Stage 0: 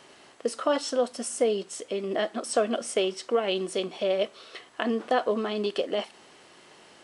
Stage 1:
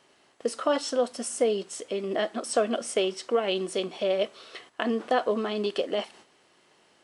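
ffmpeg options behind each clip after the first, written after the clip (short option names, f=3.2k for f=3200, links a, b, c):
-af "agate=range=-9dB:threshold=-50dB:ratio=16:detection=peak"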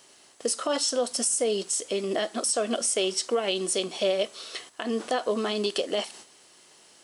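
-af "bass=f=250:g=-1,treble=f=4k:g=14,alimiter=limit=-18dB:level=0:latency=1:release=179,volume=2dB"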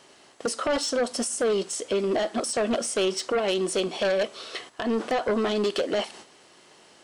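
-af "lowpass=f=2.4k:p=1,aeval=exprs='0.158*sin(PI/2*2*val(0)/0.158)':c=same,volume=-4dB"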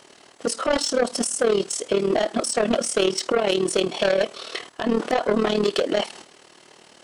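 -af "tremolo=f=38:d=0.75,volume=7dB"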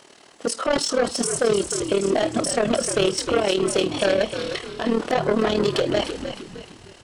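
-filter_complex "[0:a]asplit=6[a][b][c][d][e][f];[b]adelay=306,afreqshift=-77,volume=-9dB[g];[c]adelay=612,afreqshift=-154,volume=-16.7dB[h];[d]adelay=918,afreqshift=-231,volume=-24.5dB[i];[e]adelay=1224,afreqshift=-308,volume=-32.2dB[j];[f]adelay=1530,afreqshift=-385,volume=-40dB[k];[a][g][h][i][j][k]amix=inputs=6:normalize=0"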